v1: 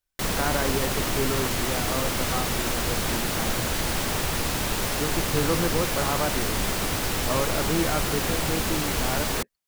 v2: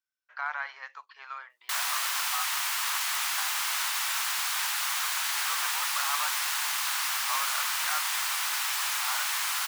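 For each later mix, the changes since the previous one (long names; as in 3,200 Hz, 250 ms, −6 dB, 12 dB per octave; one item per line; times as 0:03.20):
background: entry +1.50 s
master: add Butterworth high-pass 930 Hz 36 dB per octave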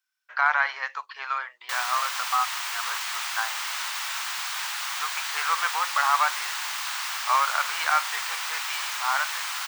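speech +11.5 dB
background: add parametric band 12,000 Hz −10 dB 0.72 octaves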